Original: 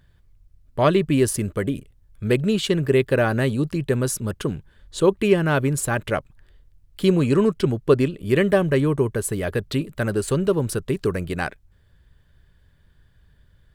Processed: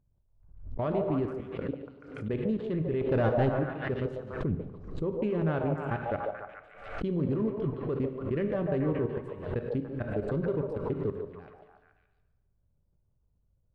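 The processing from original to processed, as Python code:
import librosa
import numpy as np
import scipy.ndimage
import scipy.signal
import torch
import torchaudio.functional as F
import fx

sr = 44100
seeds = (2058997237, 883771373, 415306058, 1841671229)

p1 = fx.wiener(x, sr, points=25)
p2 = fx.highpass(p1, sr, hz=120.0, slope=12, at=(1.43, 2.34))
p3 = fx.low_shelf(p2, sr, hz=350.0, db=10.0, at=(4.42, 5.16))
p4 = fx.level_steps(p3, sr, step_db=22)
p5 = fx.leveller(p4, sr, passes=2, at=(3.01, 3.49))
p6 = fx.spacing_loss(p5, sr, db_at_10k=34)
p7 = p6 + fx.echo_stepped(p6, sr, ms=144, hz=630.0, octaves=0.7, feedback_pct=70, wet_db=0.0, dry=0)
p8 = fx.rev_plate(p7, sr, seeds[0], rt60_s=1.2, hf_ratio=0.85, predelay_ms=0, drr_db=7.5)
p9 = fx.pre_swell(p8, sr, db_per_s=76.0)
y = p9 * 10.0 ** (-6.0 / 20.0)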